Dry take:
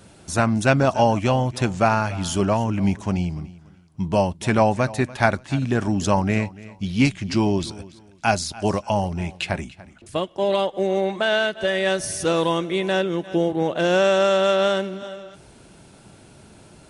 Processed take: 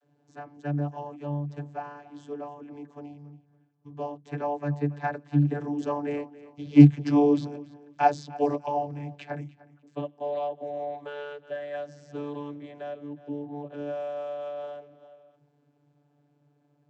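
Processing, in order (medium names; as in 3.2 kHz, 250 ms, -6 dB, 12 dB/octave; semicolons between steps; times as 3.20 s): Doppler pass-by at 7.44 s, 13 m/s, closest 12 m; small resonant body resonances 340/490/750/1600 Hz, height 10 dB, ringing for 45 ms; vocoder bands 32, saw 145 Hz; trim -1 dB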